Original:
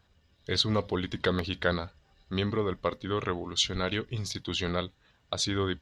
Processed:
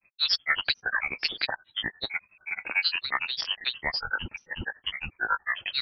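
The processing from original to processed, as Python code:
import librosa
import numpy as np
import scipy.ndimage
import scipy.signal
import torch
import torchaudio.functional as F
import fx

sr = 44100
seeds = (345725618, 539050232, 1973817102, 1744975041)

y = fx.freq_invert(x, sr, carrier_hz=3000)
y = fx.granulator(y, sr, seeds[0], grain_ms=109.0, per_s=11.0, spray_ms=570.0, spread_st=12)
y = F.gain(torch.from_numpy(y), 4.0).numpy()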